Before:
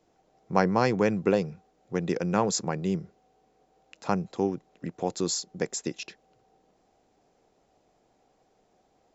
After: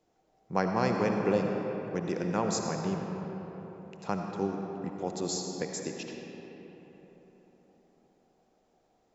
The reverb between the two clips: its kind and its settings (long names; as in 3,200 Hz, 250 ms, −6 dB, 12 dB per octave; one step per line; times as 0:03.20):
comb and all-pass reverb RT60 4.2 s, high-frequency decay 0.5×, pre-delay 35 ms, DRR 2 dB
level −5.5 dB